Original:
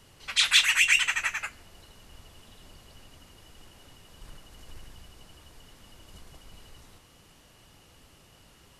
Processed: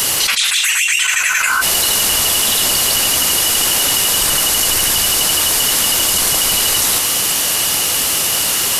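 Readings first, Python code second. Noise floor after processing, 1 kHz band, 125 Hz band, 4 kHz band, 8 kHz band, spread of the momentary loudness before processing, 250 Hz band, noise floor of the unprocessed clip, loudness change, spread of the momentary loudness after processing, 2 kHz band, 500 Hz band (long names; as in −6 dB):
−17 dBFS, +21.0 dB, +20.5 dB, +16.5 dB, +25.0 dB, 14 LU, +27.0 dB, −58 dBFS, +10.5 dB, 2 LU, +11.0 dB, +29.5 dB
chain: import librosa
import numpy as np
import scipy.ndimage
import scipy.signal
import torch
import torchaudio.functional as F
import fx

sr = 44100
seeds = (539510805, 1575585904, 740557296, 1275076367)

y = fx.spec_repair(x, sr, seeds[0], start_s=1.04, length_s=0.54, low_hz=760.0, high_hz=1600.0, source='before')
y = fx.riaa(y, sr, side='recording')
y = fx.env_flatten(y, sr, amount_pct=100)
y = y * 10.0 ** (-4.5 / 20.0)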